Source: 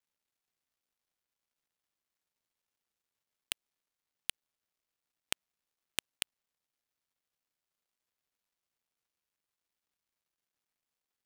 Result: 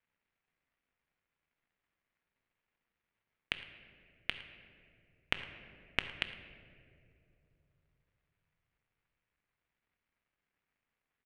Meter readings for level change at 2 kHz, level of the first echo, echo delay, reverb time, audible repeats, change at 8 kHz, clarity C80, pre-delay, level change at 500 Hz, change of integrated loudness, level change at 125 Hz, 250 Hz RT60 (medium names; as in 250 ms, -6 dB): +7.0 dB, -19.5 dB, 110 ms, 2.7 s, 1, -21.0 dB, 11.0 dB, 4 ms, +5.5 dB, +1.0 dB, +9.5 dB, 3.6 s